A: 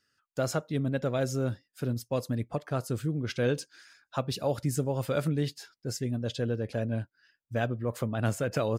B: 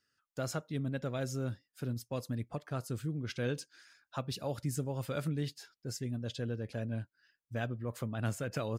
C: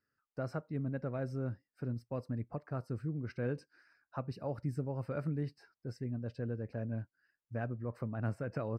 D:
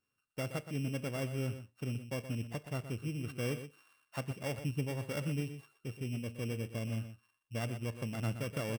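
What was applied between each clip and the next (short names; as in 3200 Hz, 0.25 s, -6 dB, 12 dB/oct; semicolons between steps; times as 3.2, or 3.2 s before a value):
dynamic EQ 550 Hz, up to -4 dB, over -41 dBFS, Q 0.83; gain -5 dB
running mean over 13 samples; gain -1 dB
sample sorter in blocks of 16 samples; echo 0.122 s -11 dB; reverb RT60 0.30 s, pre-delay 7 ms, DRR 18 dB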